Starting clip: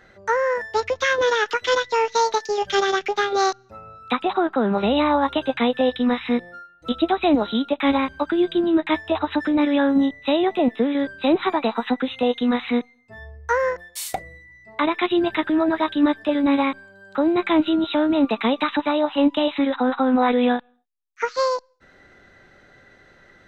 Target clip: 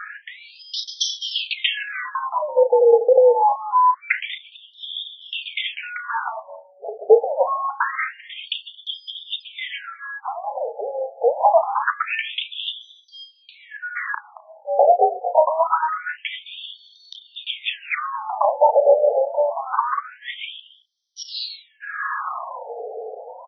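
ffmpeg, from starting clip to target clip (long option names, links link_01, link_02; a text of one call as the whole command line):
ffmpeg -i in.wav -filter_complex "[0:a]acrossover=split=360|1600[link_01][link_02][link_03];[link_02]dynaudnorm=framelen=820:gausssize=3:maxgain=12dB[link_04];[link_01][link_04][link_03]amix=inputs=3:normalize=0,equalizer=frequency=2100:width_type=o:width=2.1:gain=-4.5,afreqshift=-310,acompressor=threshold=-36dB:ratio=2.5,asplit=2[link_05][link_06];[link_06]adelay=34,volume=-10dB[link_07];[link_05][link_07]amix=inputs=2:normalize=0,aecho=1:1:224:0.106,alimiter=level_in=25.5dB:limit=-1dB:release=50:level=0:latency=1,afftfilt=real='re*between(b*sr/1024,580*pow(4400/580,0.5+0.5*sin(2*PI*0.25*pts/sr))/1.41,580*pow(4400/580,0.5+0.5*sin(2*PI*0.25*pts/sr))*1.41)':imag='im*between(b*sr/1024,580*pow(4400/580,0.5+0.5*sin(2*PI*0.25*pts/sr))/1.41,580*pow(4400/580,0.5+0.5*sin(2*PI*0.25*pts/sr))*1.41)':win_size=1024:overlap=0.75,volume=1dB" out.wav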